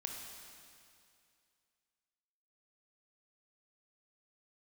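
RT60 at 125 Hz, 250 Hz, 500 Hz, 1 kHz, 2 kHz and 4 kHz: 2.4, 2.4, 2.4, 2.4, 2.4, 2.4 seconds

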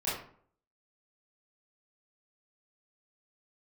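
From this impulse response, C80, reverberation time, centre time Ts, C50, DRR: 7.5 dB, 0.55 s, 50 ms, 3.0 dB, −11.0 dB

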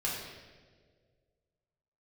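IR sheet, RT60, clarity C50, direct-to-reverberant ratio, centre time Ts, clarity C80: non-exponential decay, 1.0 dB, −5.5 dB, 74 ms, 3.5 dB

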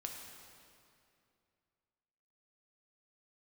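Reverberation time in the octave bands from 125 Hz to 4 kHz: 2.9, 2.7, 2.6, 2.4, 2.3, 2.0 seconds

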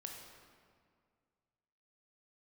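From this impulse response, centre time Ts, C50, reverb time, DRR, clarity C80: 67 ms, 2.5 dB, 2.0 s, 0.5 dB, 4.0 dB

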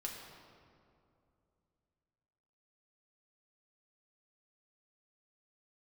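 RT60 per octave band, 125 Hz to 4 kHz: 3.4, 3.1, 2.8, 2.4, 1.7, 1.4 seconds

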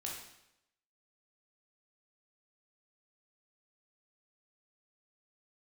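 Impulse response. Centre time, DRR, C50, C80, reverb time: 48 ms, −2.5 dB, 2.5 dB, 6.0 dB, 0.85 s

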